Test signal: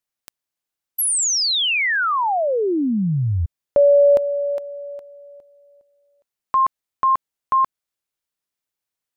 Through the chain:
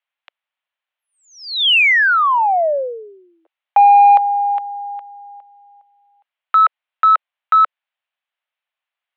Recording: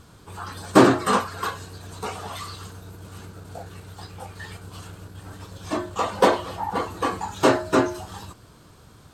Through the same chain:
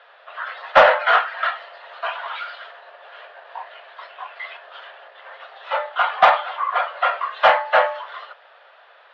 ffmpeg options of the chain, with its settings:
-af "highpass=f=330:t=q:w=0.5412,highpass=f=330:t=q:w=1.307,lowpass=f=3000:t=q:w=0.5176,lowpass=f=3000:t=q:w=0.7071,lowpass=f=3000:t=q:w=1.932,afreqshift=240,asoftclip=type=tanh:threshold=0.501,highshelf=f=2400:g=7,volume=1.68"

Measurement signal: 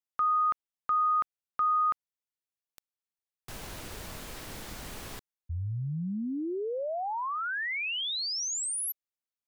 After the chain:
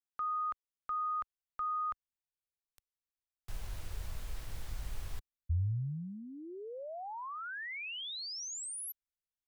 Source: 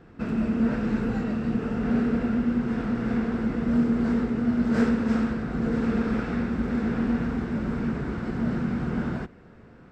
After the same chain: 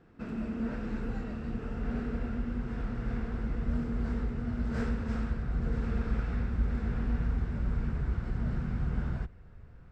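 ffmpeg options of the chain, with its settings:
-af "asubboost=boost=10.5:cutoff=78,volume=0.355"

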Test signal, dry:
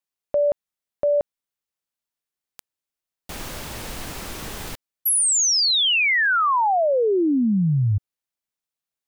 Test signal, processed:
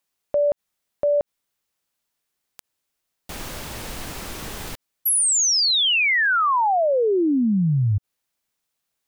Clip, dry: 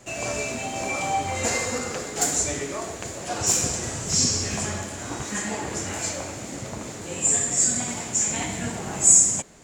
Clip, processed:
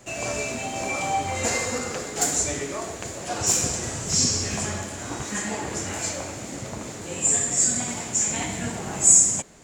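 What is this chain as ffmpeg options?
-af "acompressor=mode=upward:threshold=0.00224:ratio=1.5:attack=0.44:release=38:knee=2.83:detection=peak"

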